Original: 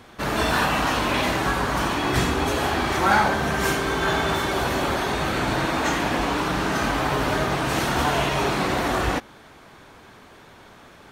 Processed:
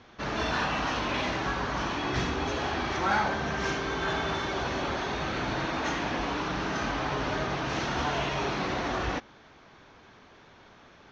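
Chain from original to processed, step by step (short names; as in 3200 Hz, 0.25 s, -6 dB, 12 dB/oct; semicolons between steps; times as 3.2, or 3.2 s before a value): elliptic low-pass 6200 Hz, stop band 40 dB; in parallel at -11 dB: soft clip -22 dBFS, distortion -12 dB; on the sum: gain -8 dB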